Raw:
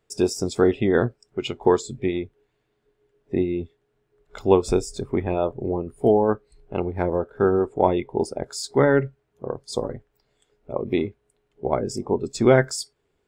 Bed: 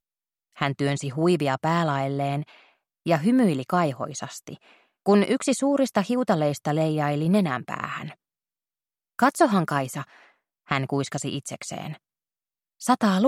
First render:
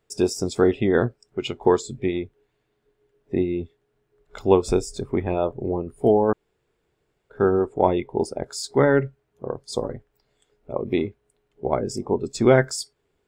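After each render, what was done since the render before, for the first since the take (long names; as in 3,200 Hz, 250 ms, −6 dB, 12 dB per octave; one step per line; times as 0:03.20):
0:06.33–0:07.30: fill with room tone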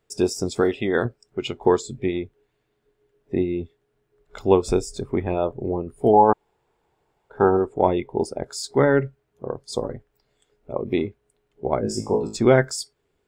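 0:00.61–0:01.05: spectral tilt +2 dB per octave
0:06.13–0:07.57: parametric band 860 Hz +13 dB 0.65 octaves
0:11.81–0:12.37: flutter between parallel walls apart 3.2 metres, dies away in 0.33 s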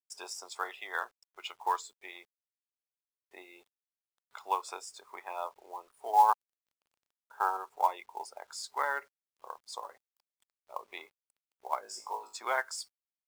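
four-pole ladder high-pass 860 Hz, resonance 55%
log-companded quantiser 6 bits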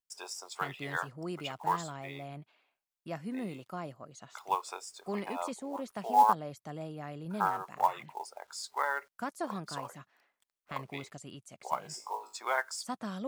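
mix in bed −18 dB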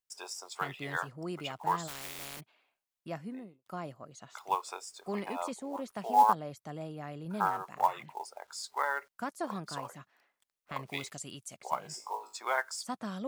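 0:01.87–0:02.39: compressing power law on the bin magnitudes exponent 0.23
0:03.09–0:03.66: fade out and dull
0:10.86–0:11.56: high-shelf EQ 2,200 Hz → 3,700 Hz +11 dB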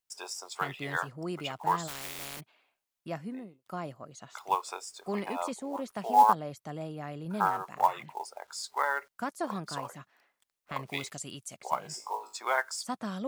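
level +2.5 dB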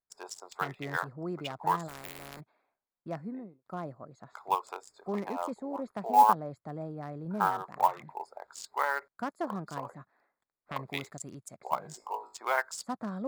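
adaptive Wiener filter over 15 samples
high-shelf EQ 9,700 Hz +5.5 dB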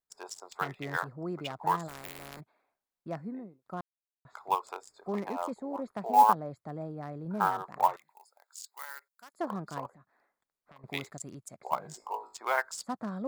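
0:03.81–0:04.25: silence
0:07.96–0:09.34: first difference
0:09.86–0:10.84: downward compressor 3 to 1, threshold −58 dBFS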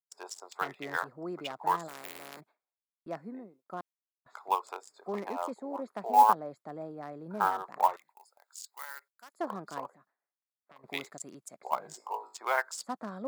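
high-pass filter 260 Hz 12 dB per octave
noise gate with hold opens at −53 dBFS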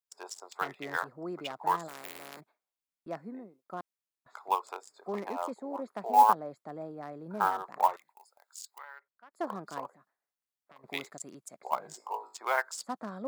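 0:08.78–0:09.34: high-frequency loss of the air 490 metres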